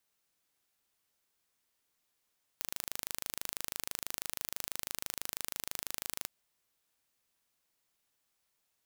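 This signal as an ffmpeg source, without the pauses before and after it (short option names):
-f lavfi -i "aevalsrc='0.355*eq(mod(n,1690),0)':d=3.67:s=44100"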